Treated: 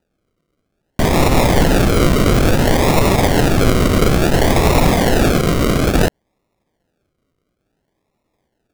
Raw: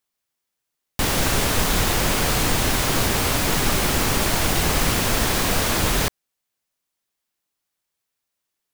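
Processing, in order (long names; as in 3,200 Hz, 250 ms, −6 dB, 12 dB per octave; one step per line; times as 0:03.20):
0:05.31–0:05.95: low-shelf EQ 400 Hz −9 dB
in parallel at −1 dB: brickwall limiter −18 dBFS, peak gain reduction 10.5 dB
on the sum: sample-and-hold swept by an LFO 40×, swing 60% 0.58 Hz
level +5 dB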